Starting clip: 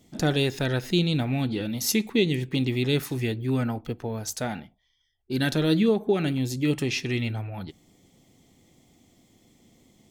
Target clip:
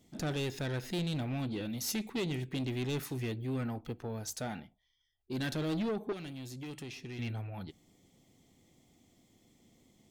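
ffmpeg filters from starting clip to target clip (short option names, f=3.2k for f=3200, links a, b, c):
-filter_complex "[0:a]asoftclip=type=tanh:threshold=-23.5dB,asettb=1/sr,asplit=3[a][b][c];[a]atrim=end=6.124[d];[b]atrim=start=6.12:end=7.19,asetpts=PTS-STARTPTS,afade=t=in:d=0.004:c=qsin,afade=t=out:st=1.066:d=0.004:c=qsin,acrossover=split=920|2600[e][f][g];[e]acompressor=threshold=-37dB:ratio=4[h];[f]acompressor=threshold=-50dB:ratio=4[i];[g]acompressor=threshold=-44dB:ratio=4[j];[h][i][j]amix=inputs=3:normalize=0[k];[c]atrim=start=7.186[l];[d][k]acrossfade=d=0.004:c1=hsin:c2=qsin[m];[m][l]acrossfade=d=0.004:c1=qsin:c2=hsin,volume=-6.5dB"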